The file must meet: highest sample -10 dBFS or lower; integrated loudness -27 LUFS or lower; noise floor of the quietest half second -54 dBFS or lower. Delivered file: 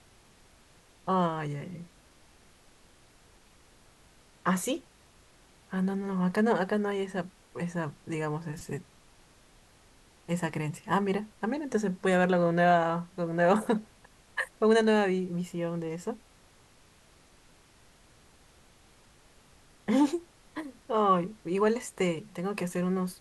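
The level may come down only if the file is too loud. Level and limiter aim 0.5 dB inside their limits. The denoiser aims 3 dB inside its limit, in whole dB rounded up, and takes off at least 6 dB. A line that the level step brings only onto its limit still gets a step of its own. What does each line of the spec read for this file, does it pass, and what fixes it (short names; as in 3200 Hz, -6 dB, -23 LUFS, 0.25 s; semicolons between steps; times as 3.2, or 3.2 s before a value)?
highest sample -13.5 dBFS: OK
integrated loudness -29.5 LUFS: OK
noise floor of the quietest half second -59 dBFS: OK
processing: none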